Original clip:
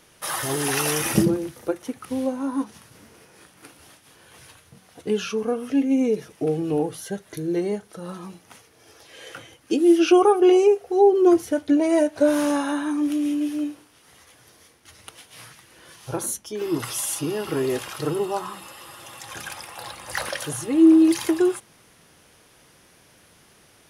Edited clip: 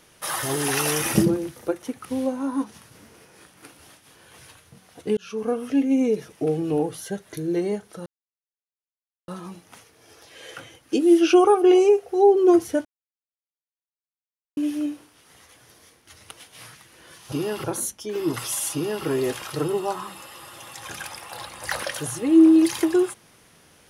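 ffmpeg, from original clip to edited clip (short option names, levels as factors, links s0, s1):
-filter_complex "[0:a]asplit=7[s0][s1][s2][s3][s4][s5][s6];[s0]atrim=end=5.17,asetpts=PTS-STARTPTS,afade=t=out:st=5.166:d=0.004:c=hsin[s7];[s1]atrim=start=5.17:end=8.06,asetpts=PTS-STARTPTS,afade=t=in:d=0.31,afade=t=out:st=2.886:d=0.004:c=hsin,apad=pad_dur=1.22[s8];[s2]atrim=start=8.06:end=11.63,asetpts=PTS-STARTPTS,afade=t=in:d=0.004:c=hsin,afade=t=out:st=3.566:d=0.004:c=hsin[s9];[s3]atrim=start=11.63:end=13.35,asetpts=PTS-STARTPTS,volume=0[s10];[s4]atrim=start=13.35:end=16.102,asetpts=PTS-STARTPTS,afade=t=in:d=0.004:c=hsin[s11];[s5]atrim=start=17.198:end=17.522[s12];[s6]atrim=start=16.098[s13];[s7][s8][s9][s10][s11]concat=n=5:v=0:a=1[s14];[s14][s12]acrossfade=d=0.004:c1=hsin:c2=hsin[s15];[s15][s13]acrossfade=d=0.004:c1=hsin:c2=hsin"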